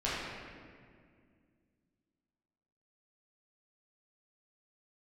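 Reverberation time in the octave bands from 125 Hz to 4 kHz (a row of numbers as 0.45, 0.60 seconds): 2.8, 3.0, 2.3, 1.8, 1.8, 1.3 seconds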